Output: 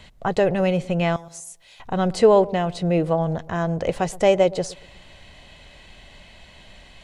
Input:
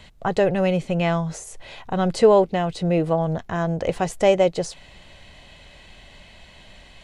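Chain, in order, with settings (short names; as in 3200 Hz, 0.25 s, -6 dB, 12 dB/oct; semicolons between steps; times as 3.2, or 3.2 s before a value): 1.16–1.8 pre-emphasis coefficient 0.9; dark delay 0.121 s, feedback 31%, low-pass 1000 Hz, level -19 dB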